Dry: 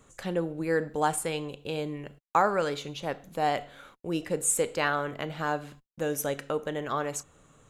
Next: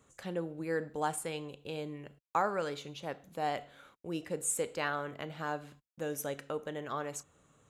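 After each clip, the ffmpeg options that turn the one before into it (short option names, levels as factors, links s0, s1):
-af "highpass=49,volume=0.447"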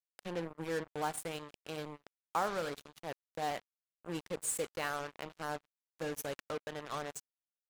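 -af "acrusher=bits=5:mix=0:aa=0.5,volume=0.708"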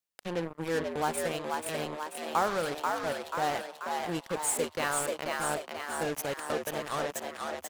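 -filter_complex "[0:a]asplit=9[s0][s1][s2][s3][s4][s5][s6][s7][s8];[s1]adelay=486,afreqshift=77,volume=0.668[s9];[s2]adelay=972,afreqshift=154,volume=0.389[s10];[s3]adelay=1458,afreqshift=231,volume=0.224[s11];[s4]adelay=1944,afreqshift=308,volume=0.13[s12];[s5]adelay=2430,afreqshift=385,volume=0.0759[s13];[s6]adelay=2916,afreqshift=462,volume=0.0437[s14];[s7]adelay=3402,afreqshift=539,volume=0.0254[s15];[s8]adelay=3888,afreqshift=616,volume=0.0148[s16];[s0][s9][s10][s11][s12][s13][s14][s15][s16]amix=inputs=9:normalize=0,volume=1.88"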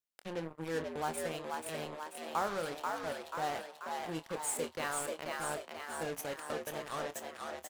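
-filter_complex "[0:a]asplit=2[s0][s1];[s1]adelay=25,volume=0.266[s2];[s0][s2]amix=inputs=2:normalize=0,volume=0.473"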